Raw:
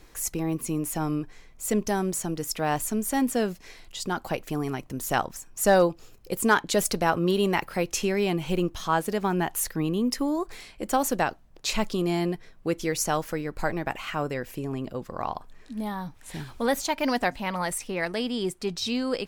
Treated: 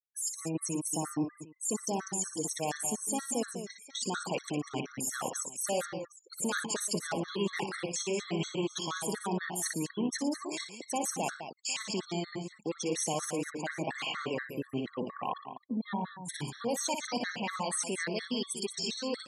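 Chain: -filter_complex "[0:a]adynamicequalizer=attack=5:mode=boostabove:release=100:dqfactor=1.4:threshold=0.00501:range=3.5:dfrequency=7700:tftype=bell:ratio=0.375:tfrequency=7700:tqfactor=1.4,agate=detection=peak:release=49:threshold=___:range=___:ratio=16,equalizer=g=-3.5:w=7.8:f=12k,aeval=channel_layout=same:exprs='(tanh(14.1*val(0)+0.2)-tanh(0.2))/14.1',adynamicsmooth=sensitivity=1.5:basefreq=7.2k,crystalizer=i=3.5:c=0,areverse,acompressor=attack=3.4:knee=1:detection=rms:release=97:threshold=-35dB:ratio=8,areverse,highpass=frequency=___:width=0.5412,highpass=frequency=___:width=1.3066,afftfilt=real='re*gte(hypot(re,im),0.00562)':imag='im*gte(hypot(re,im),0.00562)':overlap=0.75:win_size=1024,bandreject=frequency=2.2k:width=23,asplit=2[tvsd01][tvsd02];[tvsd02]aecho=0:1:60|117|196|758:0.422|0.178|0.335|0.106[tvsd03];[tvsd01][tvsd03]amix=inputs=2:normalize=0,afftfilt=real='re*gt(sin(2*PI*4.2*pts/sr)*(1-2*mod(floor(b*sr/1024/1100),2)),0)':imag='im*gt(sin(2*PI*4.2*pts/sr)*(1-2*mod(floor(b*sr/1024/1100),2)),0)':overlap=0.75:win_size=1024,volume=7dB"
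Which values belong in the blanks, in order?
-44dB, -9dB, 150, 150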